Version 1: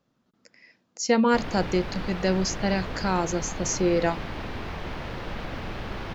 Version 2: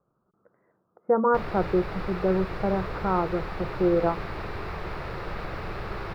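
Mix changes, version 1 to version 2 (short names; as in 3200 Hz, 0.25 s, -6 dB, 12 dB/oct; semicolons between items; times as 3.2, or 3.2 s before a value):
speech: add steep low-pass 1400 Hz 48 dB/oct; master: add thirty-one-band EQ 250 Hz -12 dB, 400 Hz +5 dB, 1250 Hz +5 dB, 3150 Hz -8 dB, 6300 Hz -9 dB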